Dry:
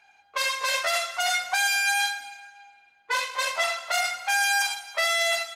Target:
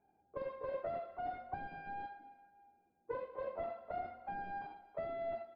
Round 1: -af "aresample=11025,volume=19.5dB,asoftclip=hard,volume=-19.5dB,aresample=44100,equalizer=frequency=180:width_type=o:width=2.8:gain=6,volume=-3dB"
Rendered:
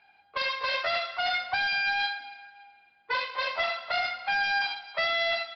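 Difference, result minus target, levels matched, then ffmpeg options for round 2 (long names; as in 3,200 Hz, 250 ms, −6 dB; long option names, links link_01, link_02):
500 Hz band −10.0 dB
-af "aresample=11025,volume=19.5dB,asoftclip=hard,volume=-19.5dB,aresample=44100,lowpass=frequency=380:width_type=q:width=1.7,equalizer=frequency=180:width_type=o:width=2.8:gain=6,volume=-3dB"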